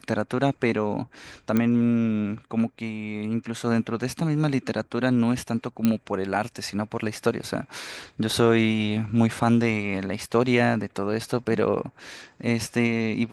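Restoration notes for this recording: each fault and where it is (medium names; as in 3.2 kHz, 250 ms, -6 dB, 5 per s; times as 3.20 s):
1.57 s: pop -11 dBFS
5.85 s: pop -9 dBFS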